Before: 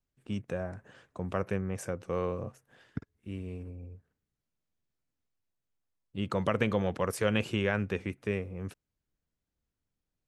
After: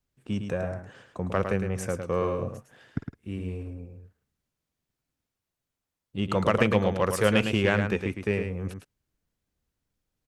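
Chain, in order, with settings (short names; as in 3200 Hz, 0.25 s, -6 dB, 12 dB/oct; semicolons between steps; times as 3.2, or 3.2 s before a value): added harmonics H 7 -34 dB, 8 -33 dB, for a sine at -12 dBFS; echo 0.108 s -7 dB; gain +6 dB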